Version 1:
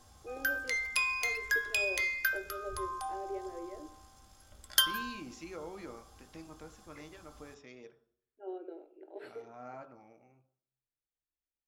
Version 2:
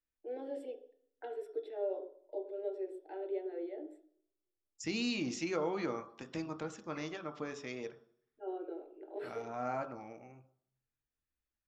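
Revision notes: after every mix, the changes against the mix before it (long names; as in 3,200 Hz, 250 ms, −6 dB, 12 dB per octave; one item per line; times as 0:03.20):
first voice: send +6.5 dB
second voice +9.5 dB
background: muted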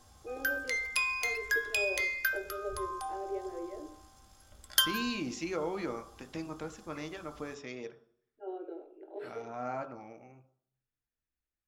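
background: unmuted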